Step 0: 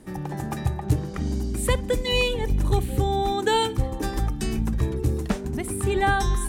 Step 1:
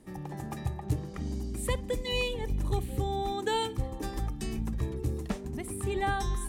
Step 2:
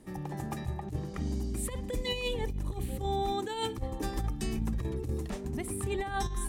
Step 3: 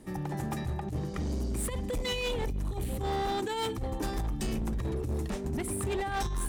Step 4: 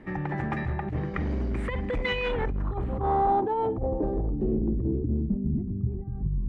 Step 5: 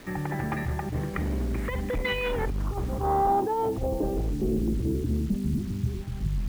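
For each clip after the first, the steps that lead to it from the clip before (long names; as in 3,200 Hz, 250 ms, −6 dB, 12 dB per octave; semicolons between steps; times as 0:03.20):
notch filter 1,500 Hz, Q 11; level −8 dB
compressor whose output falls as the input rises −31 dBFS, ratio −0.5
hard clipping −31.5 dBFS, distortion −11 dB; level +3.5 dB
low-pass filter sweep 2,000 Hz → 160 Hz, 0:02.13–0:05.82; level +3.5 dB
bit reduction 8 bits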